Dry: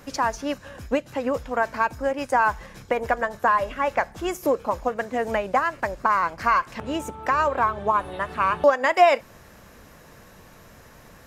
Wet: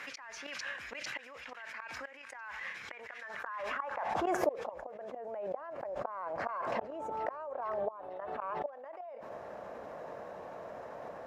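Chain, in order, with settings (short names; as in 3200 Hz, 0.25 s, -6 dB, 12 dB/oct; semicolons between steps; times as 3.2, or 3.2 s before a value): one-sided fold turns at -9 dBFS; reverse; compressor 16:1, threshold -30 dBFS, peak gain reduction 20 dB; reverse; flipped gate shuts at -28 dBFS, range -25 dB; band-pass sweep 2100 Hz -> 650 Hz, 3.02–4.43; on a send: thin delay 0.45 s, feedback 53%, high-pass 2100 Hz, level -18.5 dB; on the sum: backwards sustainer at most 22 dB/s; gain +11.5 dB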